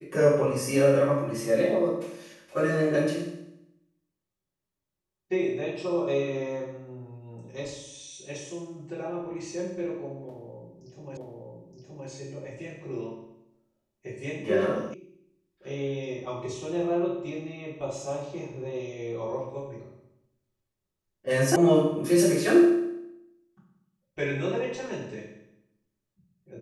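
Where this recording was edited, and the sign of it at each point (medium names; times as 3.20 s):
11.17 s: repeat of the last 0.92 s
14.94 s: sound stops dead
21.56 s: sound stops dead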